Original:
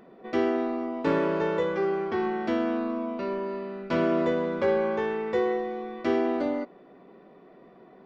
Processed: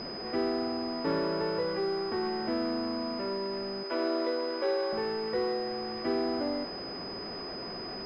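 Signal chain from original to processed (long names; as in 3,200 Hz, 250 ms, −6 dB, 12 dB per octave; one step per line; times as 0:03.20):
converter with a step at zero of −28.5 dBFS
0:03.83–0:04.93: Butterworth high-pass 260 Hz 96 dB per octave
switching amplifier with a slow clock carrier 5,000 Hz
level −7 dB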